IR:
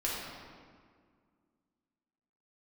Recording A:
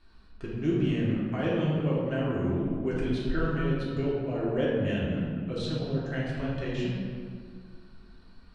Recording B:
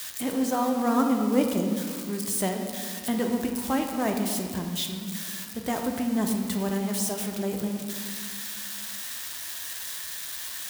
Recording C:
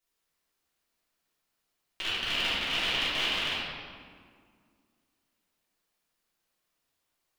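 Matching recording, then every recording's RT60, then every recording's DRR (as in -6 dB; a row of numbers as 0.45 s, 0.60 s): A; 1.9 s, 1.9 s, 1.9 s; -6.5 dB, 2.5 dB, -11.5 dB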